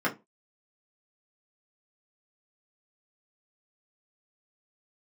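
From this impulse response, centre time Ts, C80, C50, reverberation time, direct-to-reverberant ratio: 14 ms, 26.0 dB, 16.5 dB, non-exponential decay, −4.5 dB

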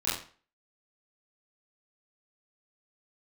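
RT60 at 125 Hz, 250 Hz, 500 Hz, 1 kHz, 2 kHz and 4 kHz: 0.40, 0.40, 0.40, 0.40, 0.40, 0.35 seconds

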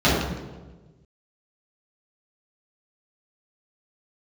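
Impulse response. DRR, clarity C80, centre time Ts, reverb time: −11.0 dB, 3.0 dB, 75 ms, 1.3 s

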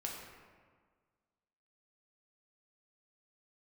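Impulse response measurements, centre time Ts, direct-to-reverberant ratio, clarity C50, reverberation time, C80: 69 ms, −2.0 dB, 2.0 dB, 1.6 s, 3.5 dB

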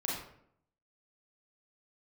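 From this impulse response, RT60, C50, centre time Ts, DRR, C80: 0.70 s, 1.5 dB, 55 ms, −5.0 dB, 5.0 dB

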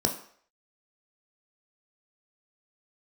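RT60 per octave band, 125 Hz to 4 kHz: 0.35, 0.45, 0.55, 0.55, 0.55, 0.55 seconds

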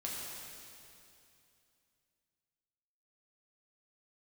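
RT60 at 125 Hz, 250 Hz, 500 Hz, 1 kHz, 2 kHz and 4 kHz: 3.0, 2.9, 2.7, 2.6, 2.6, 2.6 seconds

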